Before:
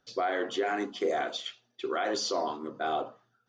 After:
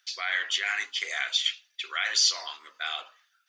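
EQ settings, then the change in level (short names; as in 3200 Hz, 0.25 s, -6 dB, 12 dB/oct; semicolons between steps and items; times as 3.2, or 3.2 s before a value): resonant high-pass 2100 Hz, resonance Q 2.2; high shelf 3200 Hz +8.5 dB; +4.0 dB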